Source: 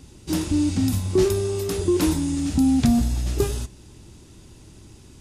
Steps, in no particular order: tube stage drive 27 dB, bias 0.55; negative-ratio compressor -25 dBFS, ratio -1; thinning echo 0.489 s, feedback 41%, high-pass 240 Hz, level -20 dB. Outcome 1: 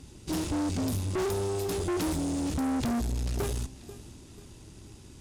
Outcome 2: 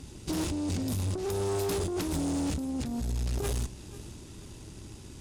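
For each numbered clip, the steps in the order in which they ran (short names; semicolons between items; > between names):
thinning echo > tube stage > negative-ratio compressor; negative-ratio compressor > thinning echo > tube stage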